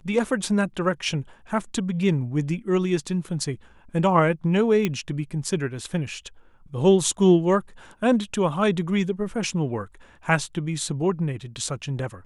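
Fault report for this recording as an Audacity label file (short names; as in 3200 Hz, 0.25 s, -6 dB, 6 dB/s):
4.850000	4.850000	pop -10 dBFS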